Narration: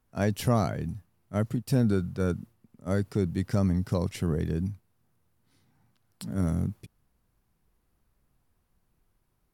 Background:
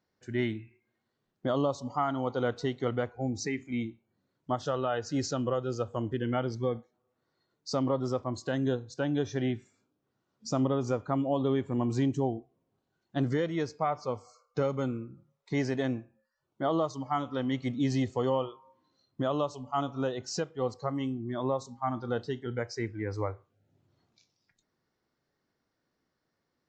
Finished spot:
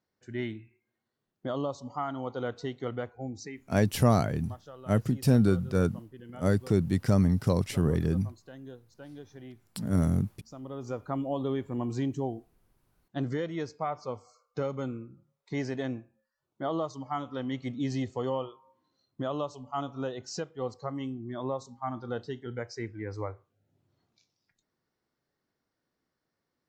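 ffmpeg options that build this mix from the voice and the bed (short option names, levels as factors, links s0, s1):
-filter_complex "[0:a]adelay=3550,volume=1.26[s0];[1:a]volume=2.99,afade=t=out:st=3.14:d=0.63:silence=0.237137,afade=t=in:st=10.62:d=0.45:silence=0.211349[s1];[s0][s1]amix=inputs=2:normalize=0"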